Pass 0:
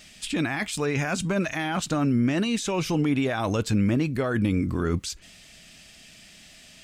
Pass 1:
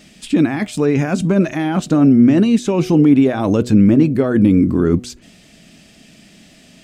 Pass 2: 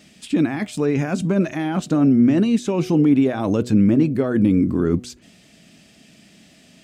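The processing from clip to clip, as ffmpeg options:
-af "equalizer=f=270:w=0.48:g=14,bandreject=f=122.3:t=h:w=4,bandreject=f=244.6:t=h:w=4,bandreject=f=366.9:t=h:w=4,bandreject=f=489.2:t=h:w=4,bandreject=f=611.5:t=h:w=4,bandreject=f=733.8:t=h:w=4"
-af "highpass=62,volume=-4.5dB"

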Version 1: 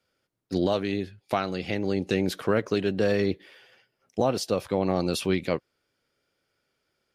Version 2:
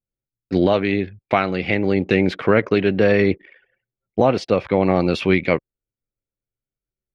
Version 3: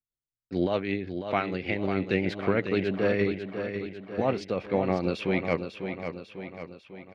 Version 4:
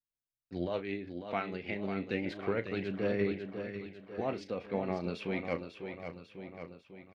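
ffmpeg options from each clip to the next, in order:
-af "lowpass=3k,anlmdn=0.00631,equalizer=f=2.2k:w=3.1:g=8,volume=8dB"
-filter_complex "[0:a]tremolo=f=6.5:d=0.44,asplit=2[a][b];[b]aecho=0:1:547|1094|1641|2188|2735|3282:0.398|0.215|0.116|0.0627|0.0339|0.0183[c];[a][c]amix=inputs=2:normalize=0,volume=-8dB"
-filter_complex "[0:a]aphaser=in_gain=1:out_gain=1:delay=4.8:decay=0.29:speed=0.3:type=sinusoidal,asplit=2[a][b];[b]adelay=35,volume=-13dB[c];[a][c]amix=inputs=2:normalize=0,volume=-8.5dB"

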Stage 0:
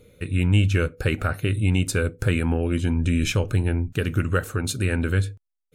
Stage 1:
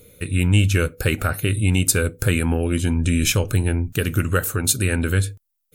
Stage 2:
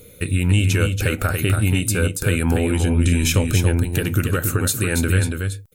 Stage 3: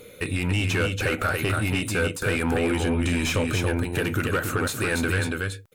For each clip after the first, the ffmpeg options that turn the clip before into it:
-af "aemphasis=mode=production:type=50fm,volume=2.5dB"
-af "alimiter=limit=-13dB:level=0:latency=1:release=188,aecho=1:1:282:0.531,volume=4dB"
-filter_complex "[0:a]asplit=2[a][b];[b]volume=14.5dB,asoftclip=hard,volume=-14.5dB,volume=-6dB[c];[a][c]amix=inputs=2:normalize=0,asplit=2[d][e];[e]highpass=f=720:p=1,volume=18dB,asoftclip=type=tanh:threshold=-4.5dB[f];[d][f]amix=inputs=2:normalize=0,lowpass=f=2k:p=1,volume=-6dB,volume=-8.5dB"

